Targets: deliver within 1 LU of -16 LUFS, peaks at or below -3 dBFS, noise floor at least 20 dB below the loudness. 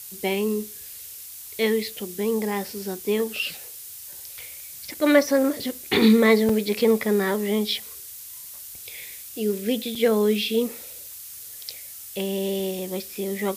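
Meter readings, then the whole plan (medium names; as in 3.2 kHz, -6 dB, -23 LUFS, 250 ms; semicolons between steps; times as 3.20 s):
dropouts 2; longest dropout 3.9 ms; noise floor -40 dBFS; noise floor target -44 dBFS; loudness -23.5 LUFS; peak level -6.0 dBFS; loudness target -16.0 LUFS
-> interpolate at 6.49/9.95 s, 3.9 ms; noise reduction 6 dB, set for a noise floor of -40 dBFS; trim +7.5 dB; peak limiter -3 dBFS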